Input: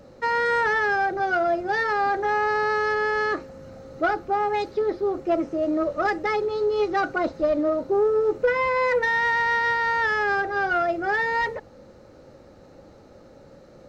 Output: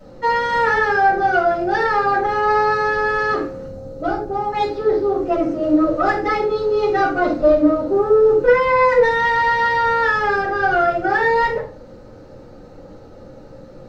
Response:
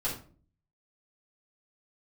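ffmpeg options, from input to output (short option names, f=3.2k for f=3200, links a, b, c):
-filter_complex "[0:a]asettb=1/sr,asplit=3[a][b][c];[a]atrim=end=3.674[d];[b]atrim=start=3.67:end=4.52,asetpts=PTS-STARTPTS,afade=t=in:d=0.004:c=qsin,afade=t=out:st=0.846:d=0.004:c=qsin,equalizer=f=1.9k:t=o:w=2.1:g=-11.5[e];[c]atrim=start=4.516[f];[d][e]acrossfade=d=0.004:c1=hsin:c2=qsin[g];[g][f]acrossfade=d=0.004:c1=qsin:c2=hsin[h];[1:a]atrim=start_sample=2205[i];[h][i]afir=irnorm=-1:irlink=0"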